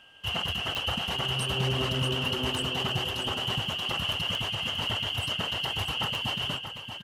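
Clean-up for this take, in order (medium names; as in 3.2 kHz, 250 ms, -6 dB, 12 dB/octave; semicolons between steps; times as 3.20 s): clip repair -20.5 dBFS; de-click; band-stop 1.6 kHz, Q 30; inverse comb 633 ms -8.5 dB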